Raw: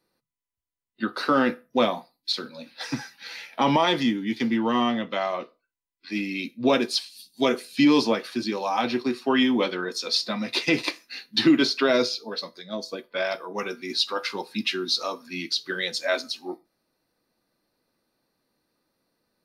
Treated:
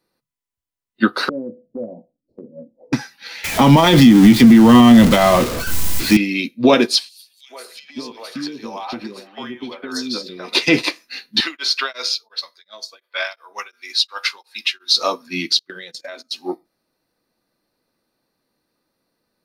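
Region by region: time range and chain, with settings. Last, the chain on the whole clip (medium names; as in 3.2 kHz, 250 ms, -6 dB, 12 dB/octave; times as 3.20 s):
1.29–2.93 s: elliptic low-pass 580 Hz, stop band 60 dB + compression 3:1, threshold -36 dBFS + doubling 18 ms -11.5 dB
3.44–6.17 s: jump at every zero crossing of -29 dBFS + tone controls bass +14 dB, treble +4 dB
7.09–10.55 s: compression 20:1, threshold -30 dBFS + three bands offset in time highs, mids, lows 110/570 ms, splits 470/2400 Hz
11.40–14.95 s: high-pass 1.1 kHz + tremolo of two beating tones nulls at 2.8 Hz
15.59–16.32 s: gate -34 dBFS, range -24 dB + compression 8:1, threshold -35 dBFS
whole clip: loudness maximiser +14.5 dB; upward expansion 1.5:1, over -30 dBFS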